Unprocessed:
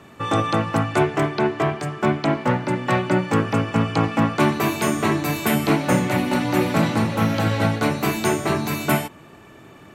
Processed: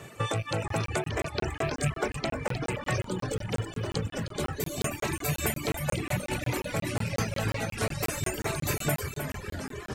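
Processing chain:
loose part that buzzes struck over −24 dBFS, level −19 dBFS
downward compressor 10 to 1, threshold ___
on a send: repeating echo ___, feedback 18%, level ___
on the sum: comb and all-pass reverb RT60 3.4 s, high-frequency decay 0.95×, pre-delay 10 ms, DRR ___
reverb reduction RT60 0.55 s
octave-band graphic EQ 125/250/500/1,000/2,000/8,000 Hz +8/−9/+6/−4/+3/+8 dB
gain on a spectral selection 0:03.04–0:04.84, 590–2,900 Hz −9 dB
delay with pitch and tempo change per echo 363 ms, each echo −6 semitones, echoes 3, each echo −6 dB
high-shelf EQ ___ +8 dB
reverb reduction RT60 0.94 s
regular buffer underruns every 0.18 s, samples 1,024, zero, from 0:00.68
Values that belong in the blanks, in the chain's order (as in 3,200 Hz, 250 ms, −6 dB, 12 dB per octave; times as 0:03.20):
−27 dBFS, 310 ms, −8 dB, 6.5 dB, 12,000 Hz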